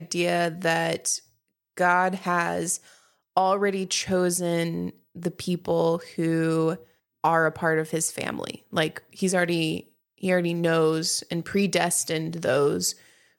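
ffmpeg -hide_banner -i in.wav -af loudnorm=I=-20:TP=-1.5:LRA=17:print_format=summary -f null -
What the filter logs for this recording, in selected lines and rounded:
Input Integrated:    -24.9 LUFS
Input True Peak:      -7.2 dBTP
Input LRA:             1.3 LU
Input Threshold:     -35.2 LUFS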